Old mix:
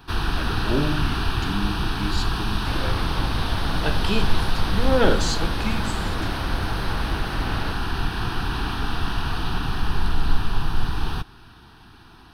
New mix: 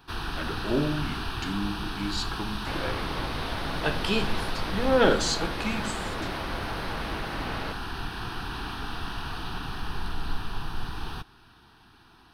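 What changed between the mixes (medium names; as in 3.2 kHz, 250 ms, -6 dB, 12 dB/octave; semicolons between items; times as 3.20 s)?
first sound -6.0 dB; master: add bass shelf 210 Hz -5.5 dB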